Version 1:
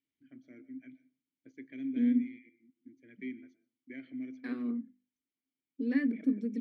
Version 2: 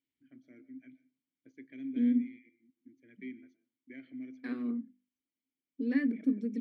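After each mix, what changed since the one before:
first voice −3.0 dB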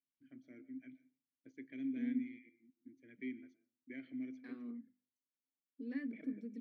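second voice −12.0 dB

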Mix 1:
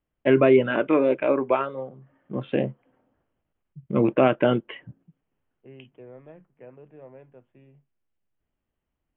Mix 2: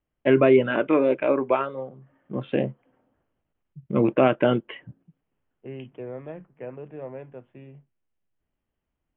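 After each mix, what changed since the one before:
second voice +9.0 dB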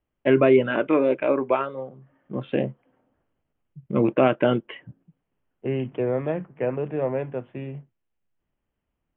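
second voice +11.5 dB

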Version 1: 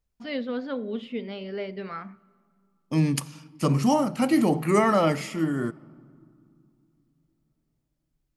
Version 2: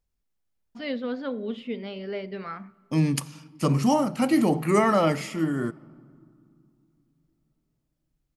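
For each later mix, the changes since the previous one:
first voice: entry +0.55 s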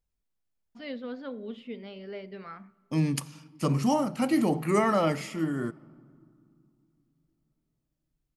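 first voice −7.0 dB
second voice −3.5 dB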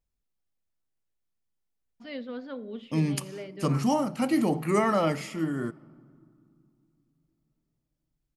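first voice: entry +1.25 s

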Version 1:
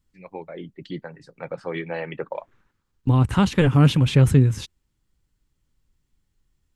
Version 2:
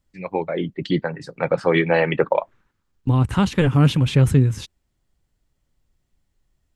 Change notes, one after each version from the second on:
first voice +12.0 dB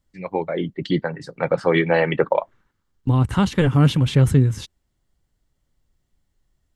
master: add notch filter 2,500 Hz, Q 12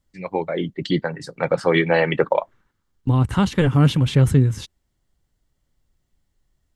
first voice: add high-shelf EQ 5,000 Hz +9.5 dB

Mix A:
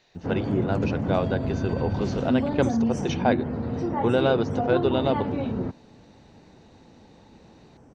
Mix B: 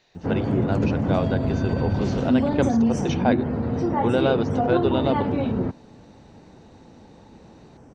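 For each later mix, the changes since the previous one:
background +4.0 dB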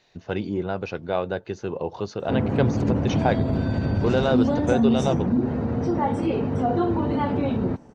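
background: entry +2.05 s

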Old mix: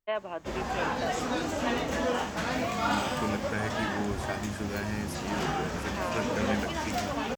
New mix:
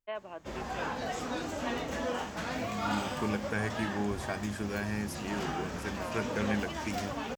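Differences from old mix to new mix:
first voice −7.0 dB
background −5.0 dB

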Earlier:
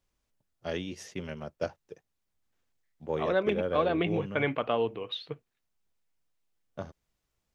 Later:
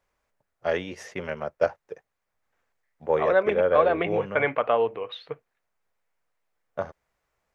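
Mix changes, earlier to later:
second voice −3.5 dB
master: add flat-topped bell 1,000 Hz +10.5 dB 2.7 octaves

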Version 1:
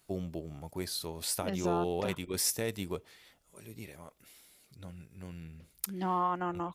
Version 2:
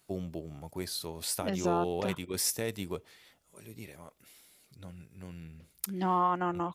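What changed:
first voice: add high-pass filter 58 Hz
second voice +3.0 dB

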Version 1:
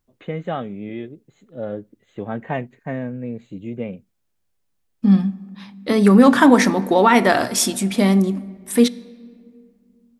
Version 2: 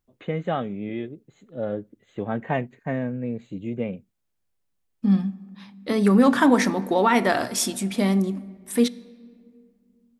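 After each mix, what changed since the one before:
second voice −5.5 dB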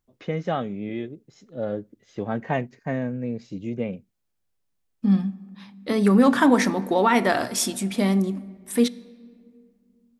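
first voice: remove Butterworth band-reject 5,300 Hz, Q 1.6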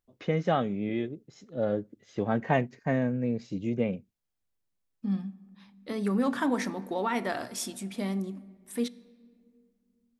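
second voice −10.5 dB

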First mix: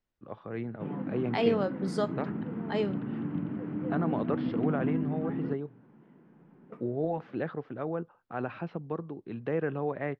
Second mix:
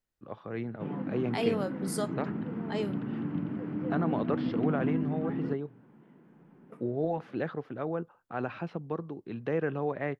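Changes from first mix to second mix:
second voice −4.0 dB
master: remove high-frequency loss of the air 140 metres

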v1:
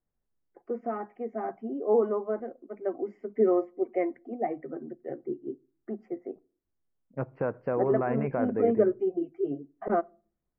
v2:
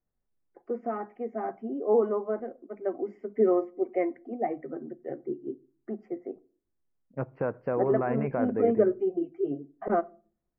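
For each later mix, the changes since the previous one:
first voice: send +6.0 dB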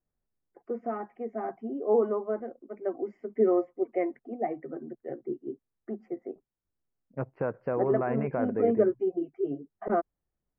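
reverb: off

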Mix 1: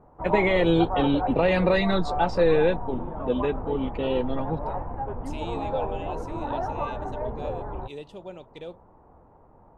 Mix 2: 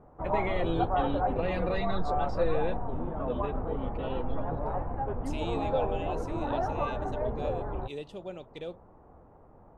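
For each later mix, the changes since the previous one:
first voice −11.0 dB
master: add parametric band 930 Hz −6 dB 0.24 octaves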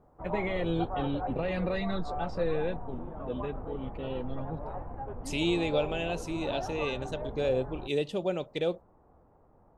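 first voice: remove high-pass filter 180 Hz 12 dB per octave
second voice +10.0 dB
background −6.5 dB

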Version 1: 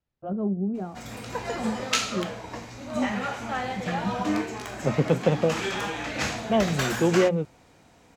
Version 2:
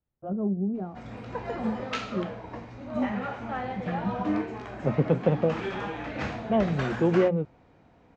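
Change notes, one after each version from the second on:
master: add head-to-tape spacing loss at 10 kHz 32 dB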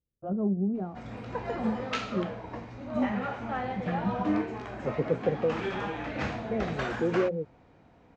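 second voice: add transistor ladder low-pass 550 Hz, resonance 55%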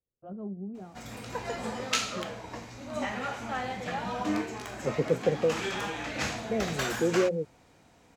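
first voice −11.0 dB
background −3.5 dB
master: remove head-to-tape spacing loss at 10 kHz 32 dB

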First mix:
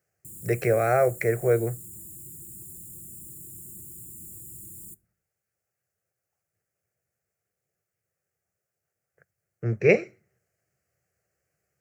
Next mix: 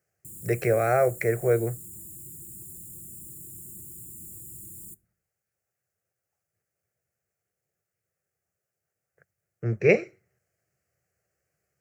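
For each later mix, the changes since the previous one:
speech: send off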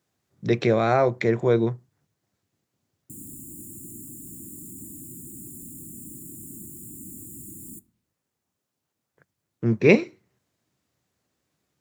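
background: entry +2.85 s
master: remove phaser with its sweep stopped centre 980 Hz, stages 6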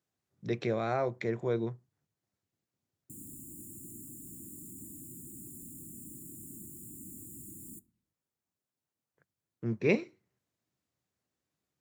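speech −11.0 dB
background −6.5 dB

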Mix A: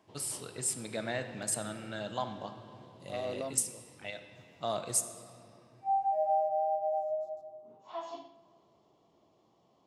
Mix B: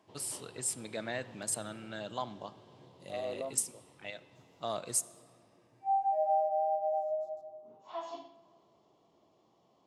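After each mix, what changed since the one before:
first voice: send −10.0 dB
second voice: add resonant band-pass 560 Hz, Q 0.85
master: add low-shelf EQ 130 Hz −4.5 dB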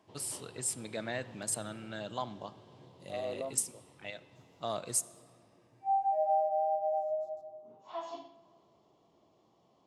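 master: add low-shelf EQ 130 Hz +4.5 dB

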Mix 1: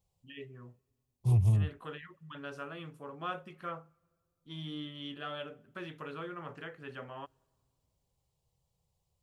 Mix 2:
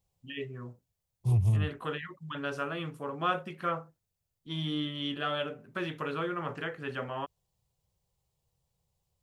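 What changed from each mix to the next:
first voice +10.5 dB
reverb: off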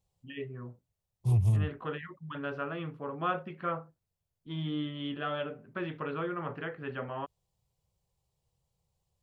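first voice: add high-frequency loss of the air 350 metres

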